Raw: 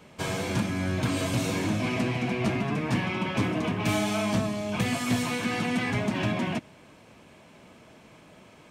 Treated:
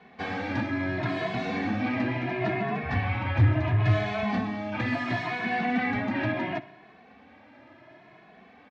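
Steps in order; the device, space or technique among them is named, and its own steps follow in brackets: 2.83–4.23 resonant low shelf 140 Hz +13.5 dB, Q 3; barber-pole flanger into a guitar amplifier (endless flanger 2.3 ms +0.72 Hz; soft clip -11.5 dBFS, distortion -16 dB; speaker cabinet 86–4000 Hz, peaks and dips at 160 Hz -7 dB, 280 Hz +5 dB, 480 Hz -4 dB, 740 Hz +8 dB, 1800 Hz +9 dB, 3000 Hz -5 dB); tape echo 61 ms, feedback 64%, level -17 dB, low-pass 5700 Hz; gain +1 dB

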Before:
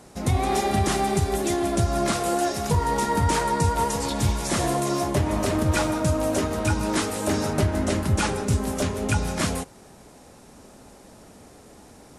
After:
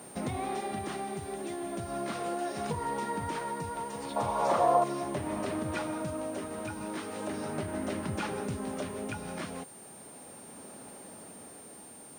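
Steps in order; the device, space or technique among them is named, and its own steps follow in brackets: medium wave at night (BPF 150–3700 Hz; compressor 4:1, threshold -32 dBFS, peak gain reduction 11 dB; tremolo 0.37 Hz, depth 38%; whine 9000 Hz -49 dBFS; white noise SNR 24 dB); 4.16–4.84 band shelf 780 Hz +14.5 dB

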